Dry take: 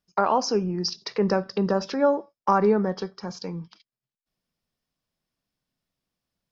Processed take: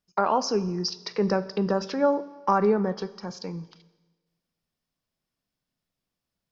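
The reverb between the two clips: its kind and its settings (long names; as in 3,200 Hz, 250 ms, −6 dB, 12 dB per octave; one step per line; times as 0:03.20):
four-comb reverb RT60 1.3 s, combs from 28 ms, DRR 16.5 dB
level −1.5 dB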